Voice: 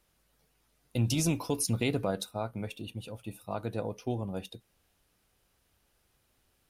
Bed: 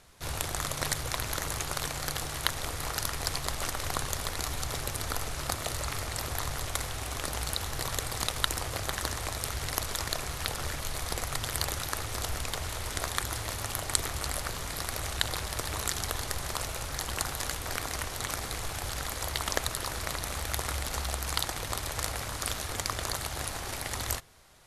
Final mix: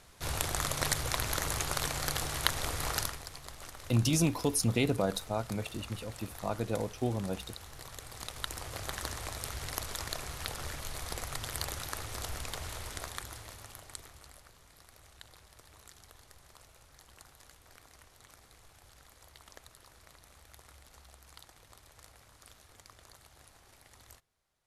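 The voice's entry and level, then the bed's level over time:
2.95 s, +1.0 dB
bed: 3.00 s 0 dB
3.26 s -14 dB
7.95 s -14 dB
8.89 s -5.5 dB
12.76 s -5.5 dB
14.52 s -23.5 dB

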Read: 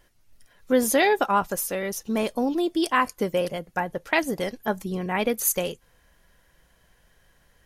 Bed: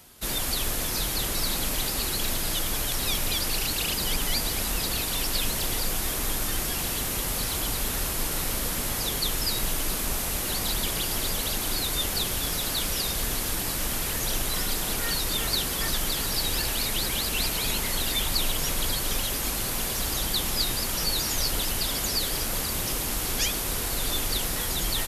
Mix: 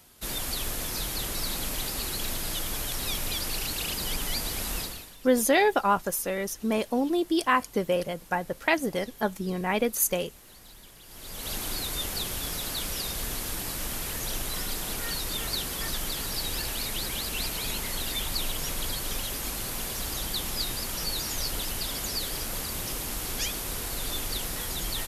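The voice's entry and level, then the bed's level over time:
4.55 s, -1.5 dB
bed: 4.80 s -4 dB
5.17 s -23 dB
11.02 s -23 dB
11.52 s -4.5 dB

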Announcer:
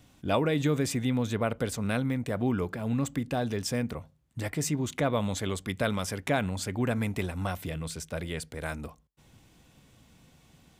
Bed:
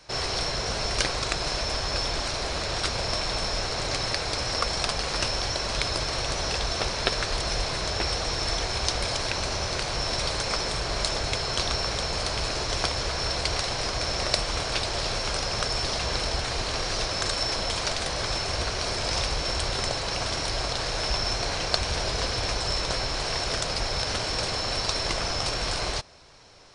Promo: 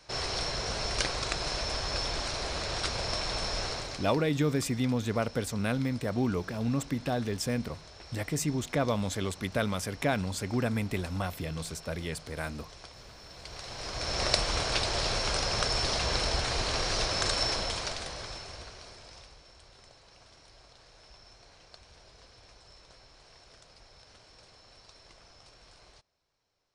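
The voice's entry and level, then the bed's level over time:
3.75 s, -1.0 dB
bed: 3.70 s -4.5 dB
4.28 s -22 dB
13.28 s -22 dB
14.24 s -1.5 dB
17.45 s -1.5 dB
19.49 s -28 dB

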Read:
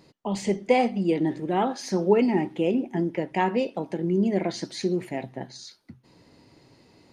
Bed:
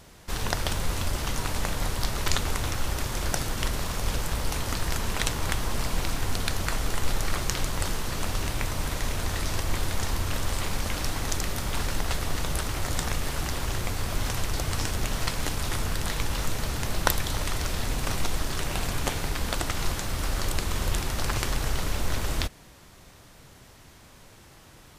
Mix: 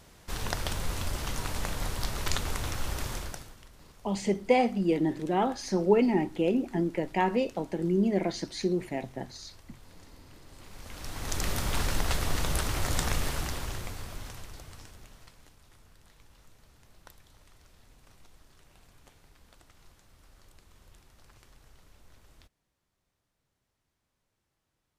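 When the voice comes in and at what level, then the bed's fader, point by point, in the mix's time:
3.80 s, -2.5 dB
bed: 3.13 s -4.5 dB
3.65 s -26 dB
10.46 s -26 dB
11.47 s -0.5 dB
13.21 s -0.5 dB
15.59 s -30 dB

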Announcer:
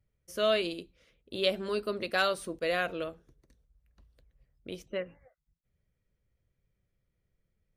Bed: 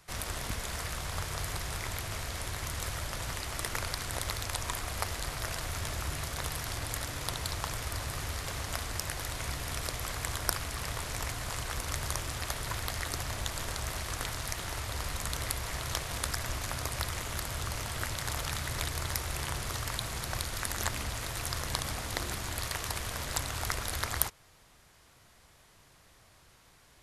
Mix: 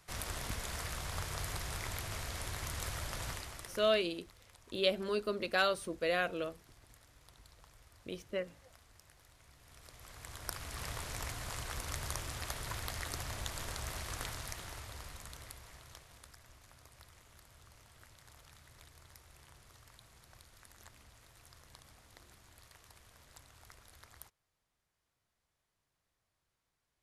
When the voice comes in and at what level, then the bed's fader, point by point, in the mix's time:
3.40 s, -2.5 dB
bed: 3.29 s -4 dB
4.13 s -26.5 dB
9.50 s -26.5 dB
10.82 s -5.5 dB
14.26 s -5.5 dB
16.40 s -24.5 dB

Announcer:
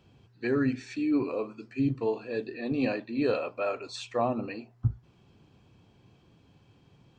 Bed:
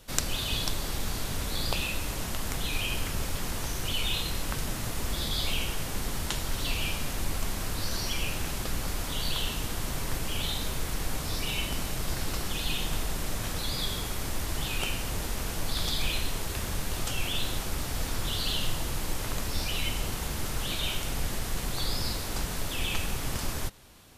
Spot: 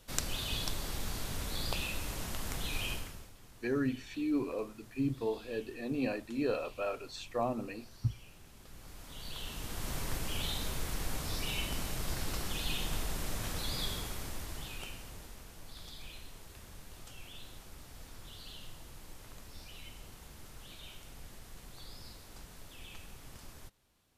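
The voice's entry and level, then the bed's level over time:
3.20 s, -5.5 dB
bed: 2.91 s -6 dB
3.34 s -24.5 dB
8.51 s -24.5 dB
9.92 s -5 dB
13.86 s -5 dB
15.50 s -19 dB

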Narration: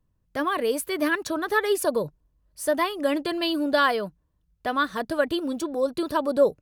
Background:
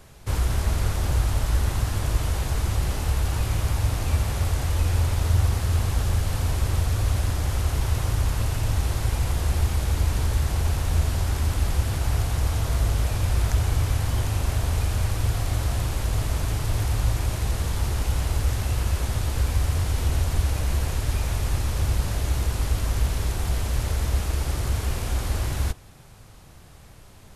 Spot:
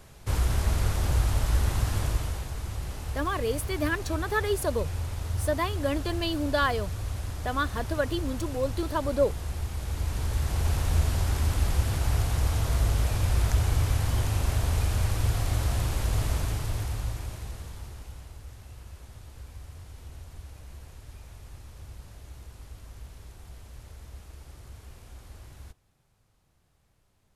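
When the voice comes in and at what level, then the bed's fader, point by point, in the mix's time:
2.80 s, -4.5 dB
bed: 2.01 s -2 dB
2.51 s -10 dB
9.69 s -10 dB
10.75 s -2 dB
16.31 s -2 dB
18.37 s -21 dB

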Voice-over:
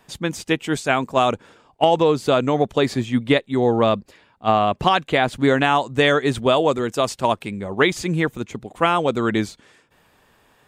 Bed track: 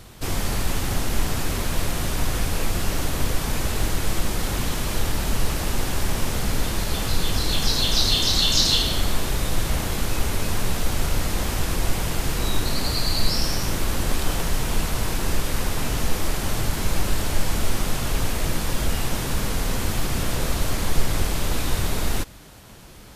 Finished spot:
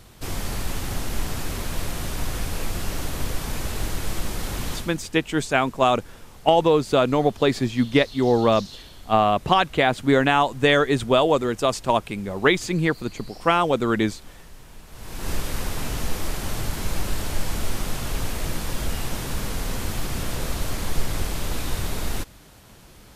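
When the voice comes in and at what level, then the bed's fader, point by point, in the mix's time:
4.65 s, -1.0 dB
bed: 4.75 s -4 dB
5.02 s -22 dB
14.85 s -22 dB
15.30 s -3.5 dB

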